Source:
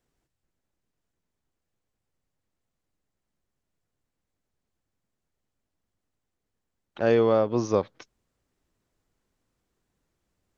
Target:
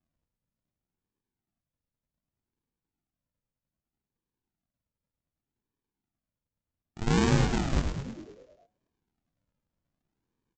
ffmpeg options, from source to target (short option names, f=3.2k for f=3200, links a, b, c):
-filter_complex "[0:a]highpass=200,aresample=16000,acrusher=samples=33:mix=1:aa=0.000001:lfo=1:lforange=19.8:lforate=0.65,aresample=44100,asplit=9[a][b][c][d][e][f][g][h][i];[b]adelay=105,afreqshift=-92,volume=-5dB[j];[c]adelay=210,afreqshift=-184,volume=-9.7dB[k];[d]adelay=315,afreqshift=-276,volume=-14.5dB[l];[e]adelay=420,afreqshift=-368,volume=-19.2dB[m];[f]adelay=525,afreqshift=-460,volume=-23.9dB[n];[g]adelay=630,afreqshift=-552,volume=-28.7dB[o];[h]adelay=735,afreqshift=-644,volume=-33.4dB[p];[i]adelay=840,afreqshift=-736,volume=-38.1dB[q];[a][j][k][l][m][n][o][p][q]amix=inputs=9:normalize=0,volume=-3.5dB"